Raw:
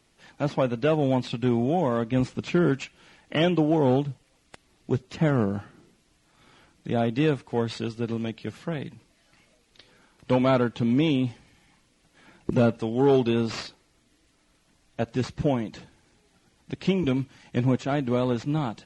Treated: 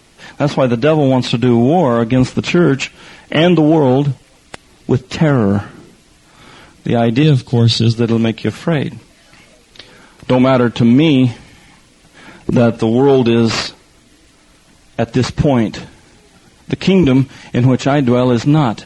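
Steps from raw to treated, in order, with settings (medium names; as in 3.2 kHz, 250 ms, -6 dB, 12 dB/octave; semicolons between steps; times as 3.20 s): 7.23–7.93 s: ten-band graphic EQ 125 Hz +9 dB, 500 Hz -4 dB, 1 kHz -8 dB, 2 kHz -8 dB, 4 kHz +9 dB; loudness maximiser +17.5 dB; trim -1 dB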